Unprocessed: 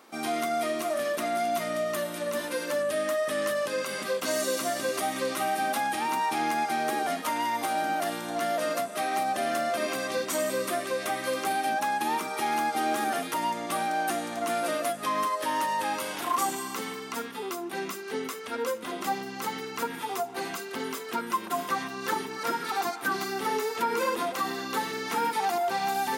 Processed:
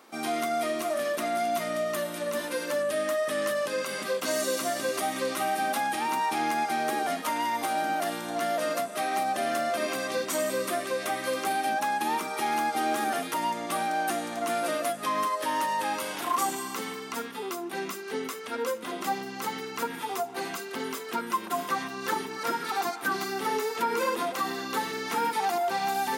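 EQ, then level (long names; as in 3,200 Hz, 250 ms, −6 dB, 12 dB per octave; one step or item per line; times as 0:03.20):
high-pass filter 100 Hz
0.0 dB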